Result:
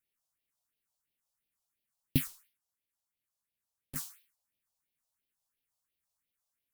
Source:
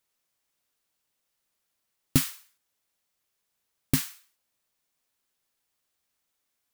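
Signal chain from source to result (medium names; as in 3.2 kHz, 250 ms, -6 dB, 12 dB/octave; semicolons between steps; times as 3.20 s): phase shifter stages 4, 2.9 Hz, lowest notch 300–1300 Hz; 2.27–3.96 s: valve stage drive 34 dB, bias 0.6; trim -6 dB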